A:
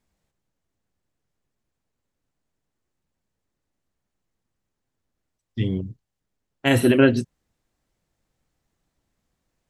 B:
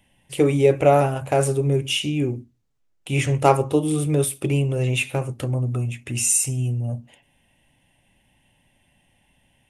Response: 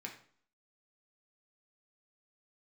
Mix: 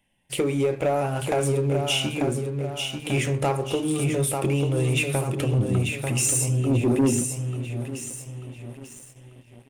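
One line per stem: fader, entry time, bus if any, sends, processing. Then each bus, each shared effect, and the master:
−7.5 dB, 0.00 s, no send, echo send −18.5 dB, inverse Chebyshev low-pass filter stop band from 1,500 Hz, stop band 60 dB
−5.5 dB, 0.00 s, send −8.5 dB, echo send −5 dB, downward compressor 5 to 1, threshold −23 dBFS, peak gain reduction 12.5 dB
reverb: on, RT60 0.55 s, pre-delay 3 ms
echo: repeating echo 891 ms, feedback 43%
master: mains-hum notches 50/100/150/200/250/300/350/400 Hz; leveller curve on the samples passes 2

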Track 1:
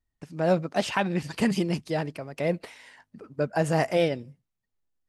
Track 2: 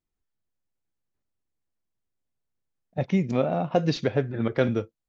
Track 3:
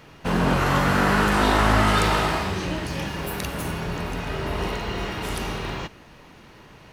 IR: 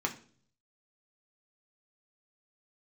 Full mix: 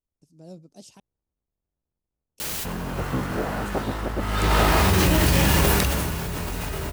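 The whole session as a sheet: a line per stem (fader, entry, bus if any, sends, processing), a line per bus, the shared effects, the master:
−16.5 dB, 0.00 s, muted 0:01.00–0:02.36, no send, drawn EQ curve 320 Hz 0 dB, 1,800 Hz −22 dB, 5,800 Hz +7 dB
−5.5 dB, 0.00 s, no send, sub-harmonics by changed cycles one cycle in 3, inverted; low-pass filter 1,100 Hz
0:04.17 −17.5 dB → 0:04.53 −5.5 dB → 0:05.70 −5.5 dB → 0:06.21 −16.5 dB, 2.40 s, no send, parametric band 62 Hz +8.5 dB 1.2 octaves; bit-depth reduction 6 bits, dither triangular; envelope flattener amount 100%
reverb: not used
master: no processing

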